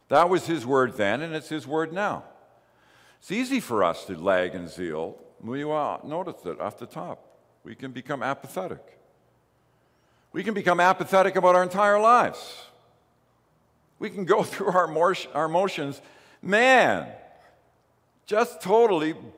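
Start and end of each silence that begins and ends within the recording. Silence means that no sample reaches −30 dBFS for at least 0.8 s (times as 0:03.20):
0:02.18–0:03.31
0:08.74–0:10.35
0:12.51–0:14.02
0:17.07–0:18.30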